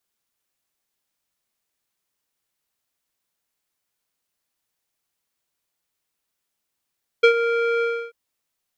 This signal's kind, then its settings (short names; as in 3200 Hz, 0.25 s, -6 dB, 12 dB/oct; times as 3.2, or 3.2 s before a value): synth note square A#4 12 dB/oct, low-pass 2000 Hz, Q 2.3, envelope 0.5 oct, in 0.10 s, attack 11 ms, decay 0.09 s, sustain -10.5 dB, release 0.30 s, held 0.59 s